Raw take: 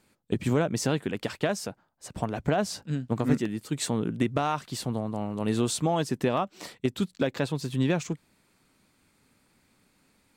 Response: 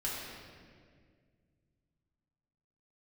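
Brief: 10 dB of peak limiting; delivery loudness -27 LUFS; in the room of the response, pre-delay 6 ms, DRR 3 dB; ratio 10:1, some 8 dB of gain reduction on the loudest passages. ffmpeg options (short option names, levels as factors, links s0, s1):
-filter_complex "[0:a]acompressor=threshold=0.0501:ratio=10,alimiter=limit=0.0631:level=0:latency=1,asplit=2[s0][s1];[1:a]atrim=start_sample=2205,adelay=6[s2];[s1][s2]afir=irnorm=-1:irlink=0,volume=0.447[s3];[s0][s3]amix=inputs=2:normalize=0,volume=2.11"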